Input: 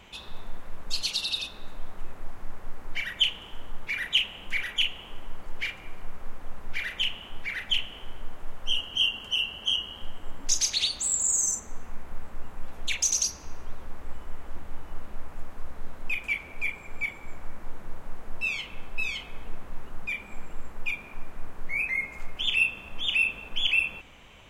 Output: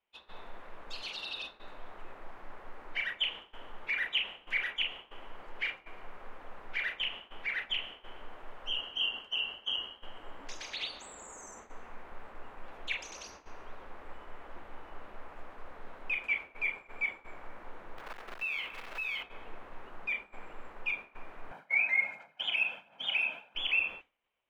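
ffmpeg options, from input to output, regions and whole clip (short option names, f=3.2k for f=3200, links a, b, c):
-filter_complex "[0:a]asettb=1/sr,asplit=3[a][b][c];[a]atrim=end=17.984[d];[b]atrim=start=17.98:end=19.23,asetpts=PTS-STARTPTS,afade=t=in:d=0.004:c=qsin,afade=t=out:st=1.246:d=0.004:c=qsin,equalizer=f=1.9k:w=0.74:g=7.5,acompressor=threshold=-29dB:ratio=6:attack=3.2:release=140:knee=1:detection=peak,acrusher=bits=3:mode=log:mix=0:aa=0.000001[e];[c]atrim=start=19.226[f];[d][e]acrossfade=d=0.004:c1=hsin:c2=qsin[g];[g][f]acrossfade=d=0.004:c1=qsin:c2=hsin,asettb=1/sr,asplit=3[h][i][j];[h]atrim=end=21.514[k];[i]atrim=start=21.51:end=23.55,asetpts=PTS-STARTPTS,afade=t=in:d=0.004:c=qsin,afade=t=out:st=2.036:d=0.004:c=qsin,highpass=f=130:w=0.5412,highpass=f=130:w=1.3066,aecho=1:1:1.3:0.64,atrim=end_sample=89964,aphaser=in_gain=1:out_gain=1:delay=3.2:decay=0.37:speed=1.4:type=sinusoidal[l];[j]atrim=start=23.546[m];[k][l]acrossfade=d=0.004:c1=hsin:c2=qsin[n];[n][m]acrossfade=d=0.004:c1=qsin:c2=hsin,agate=range=-33dB:threshold=-33dB:ratio=3:detection=peak,acrossover=split=2700[o][p];[p]acompressor=threshold=-37dB:ratio=4:attack=1:release=60[q];[o][q]amix=inputs=2:normalize=0,acrossover=split=310 3700:gain=0.178 1 0.158[r][s][t];[r][s][t]amix=inputs=3:normalize=0"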